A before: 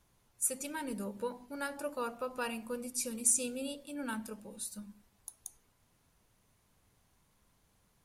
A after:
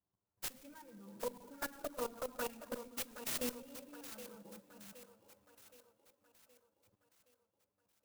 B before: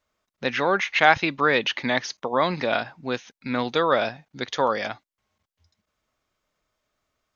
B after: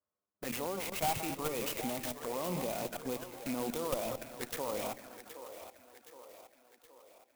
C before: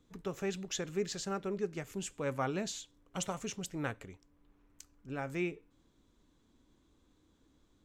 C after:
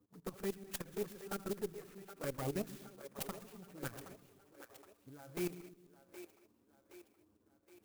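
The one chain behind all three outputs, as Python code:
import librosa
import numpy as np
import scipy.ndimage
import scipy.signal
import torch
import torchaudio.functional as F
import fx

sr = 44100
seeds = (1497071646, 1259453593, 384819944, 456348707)

y = fx.reverse_delay_fb(x, sr, ms=106, feedback_pct=48, wet_db=-12.0)
y = scipy.signal.sosfilt(scipy.signal.butter(4, 49.0, 'highpass', fs=sr, output='sos'), y)
y = fx.low_shelf(y, sr, hz=96.0, db=-8.5)
y = fx.level_steps(y, sr, step_db=18)
y = fx.env_lowpass(y, sr, base_hz=1100.0, full_db=-37.0)
y = fx.tube_stage(y, sr, drive_db=29.0, bias=0.4)
y = fx.env_flanger(y, sr, rest_ms=10.2, full_db=-36.0)
y = fx.echo_split(y, sr, split_hz=320.0, low_ms=130, high_ms=770, feedback_pct=52, wet_db=-11.5)
y = fx.clock_jitter(y, sr, seeds[0], jitter_ms=0.071)
y = y * 10.0 ** (4.0 / 20.0)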